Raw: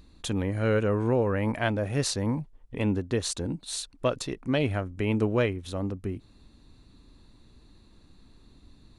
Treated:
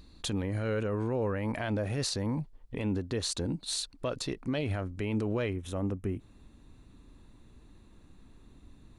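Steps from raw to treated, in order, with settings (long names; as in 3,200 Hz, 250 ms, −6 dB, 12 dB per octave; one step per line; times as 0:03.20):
parametric band 4,400 Hz +4.5 dB 0.4 octaves, from 0:05.55 −12.5 dB
brickwall limiter −23 dBFS, peak gain reduction 10 dB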